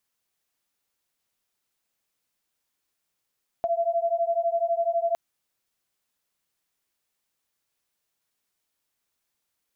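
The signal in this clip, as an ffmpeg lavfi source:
ffmpeg -f lavfi -i "aevalsrc='0.0562*(sin(2*PI*671*t)+sin(2*PI*683*t))':duration=1.51:sample_rate=44100" out.wav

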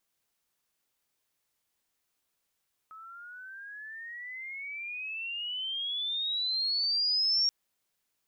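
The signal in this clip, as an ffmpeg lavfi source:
ffmpeg -f lavfi -i "aevalsrc='pow(10,(-23+22*(t/4.58-1))/20)*sin(2*PI*1280*4.58/(25.5*log(2)/12)*(exp(25.5*log(2)/12*t/4.58)-1))':duration=4.58:sample_rate=44100" out.wav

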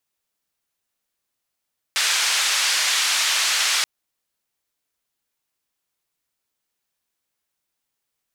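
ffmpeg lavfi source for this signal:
ffmpeg -f lavfi -i "anoisesrc=color=white:duration=1.88:sample_rate=44100:seed=1,highpass=frequency=1300,lowpass=frequency=6000,volume=-9.2dB" out.wav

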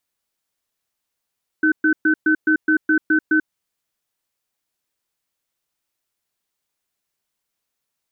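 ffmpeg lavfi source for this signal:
ffmpeg -f lavfi -i "aevalsrc='0.168*(sin(2*PI*312*t)+sin(2*PI*1520*t))*clip(min(mod(t,0.21),0.09-mod(t,0.21))/0.005,0,1)':duration=1.83:sample_rate=44100" out.wav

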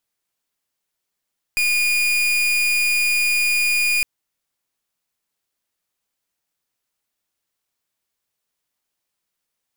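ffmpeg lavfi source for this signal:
ffmpeg -f lavfi -i "aevalsrc='0.119*(2*lt(mod(2440*t,1),0.39)-1)':duration=2.46:sample_rate=44100" out.wav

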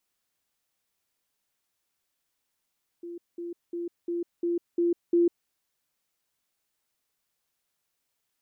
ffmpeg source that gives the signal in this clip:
ffmpeg -f lavfi -i "aevalsrc='pow(10,(-36+3*floor(t/0.35))/20)*sin(2*PI*344*t)*clip(min(mod(t,0.35),0.15-mod(t,0.35))/0.005,0,1)':duration=2.45:sample_rate=44100" out.wav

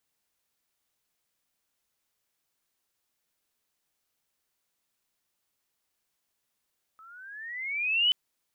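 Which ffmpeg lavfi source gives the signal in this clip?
ffmpeg -f lavfi -i "aevalsrc='pow(10,(-19+30*(t/1.13-1))/20)*sin(2*PI*1280*1.13/(15*log(2)/12)*(exp(15*log(2)/12*t/1.13)-1))':duration=1.13:sample_rate=44100" out.wav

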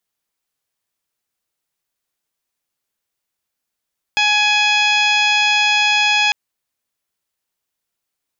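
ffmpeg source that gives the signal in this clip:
ffmpeg -f lavfi -i "aevalsrc='0.1*sin(2*PI*838*t)+0.0794*sin(2*PI*1676*t)+0.178*sin(2*PI*2514*t)+0.112*sin(2*PI*3352*t)+0.0376*sin(2*PI*4190*t)+0.0562*sin(2*PI*5028*t)+0.0141*sin(2*PI*5866*t)+0.0282*sin(2*PI*6704*t)':duration=2.15:sample_rate=44100" out.wav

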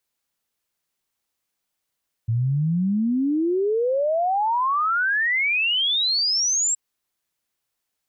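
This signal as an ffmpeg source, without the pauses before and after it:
ffmpeg -f lavfi -i "aevalsrc='0.119*clip(min(t,4.47-t)/0.01,0,1)*sin(2*PI*110*4.47/log(7700/110)*(exp(log(7700/110)*t/4.47)-1))':duration=4.47:sample_rate=44100" out.wav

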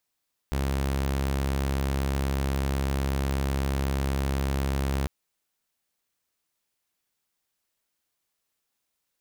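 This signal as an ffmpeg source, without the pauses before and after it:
ffmpeg -f lavfi -i "aevalsrc='0.0794*(2*mod(68.1*t,1)-1)':duration=4.55:sample_rate=44100" out.wav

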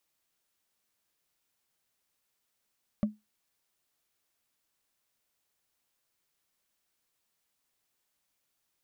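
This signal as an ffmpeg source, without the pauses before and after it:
ffmpeg -f lavfi -i "aevalsrc='0.1*pow(10,-3*t/0.2)*sin(2*PI*212*t)+0.0355*pow(10,-3*t/0.059)*sin(2*PI*584.5*t)+0.0126*pow(10,-3*t/0.026)*sin(2*PI*1145.6*t)+0.00447*pow(10,-3*t/0.014)*sin(2*PI*1893.8*t)+0.00158*pow(10,-3*t/0.009)*sin(2*PI*2828.1*t)':duration=0.45:sample_rate=44100" out.wav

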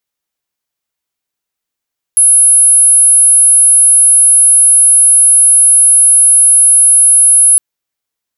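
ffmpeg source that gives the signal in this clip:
ffmpeg -f lavfi -i "sine=frequency=10600:duration=5.41:sample_rate=44100,volume=15.06dB" out.wav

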